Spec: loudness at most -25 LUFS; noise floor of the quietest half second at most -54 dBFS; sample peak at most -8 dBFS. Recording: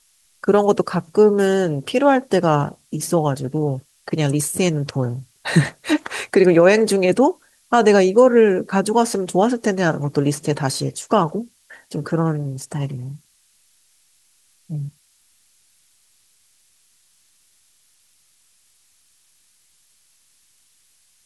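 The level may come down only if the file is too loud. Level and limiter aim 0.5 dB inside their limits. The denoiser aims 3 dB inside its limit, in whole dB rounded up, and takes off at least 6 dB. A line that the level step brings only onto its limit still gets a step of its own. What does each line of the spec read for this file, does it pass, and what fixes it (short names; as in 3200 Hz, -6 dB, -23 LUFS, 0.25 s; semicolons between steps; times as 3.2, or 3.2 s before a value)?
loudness -18.5 LUFS: fail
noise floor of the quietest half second -60 dBFS: OK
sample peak -3.0 dBFS: fail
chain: gain -7 dB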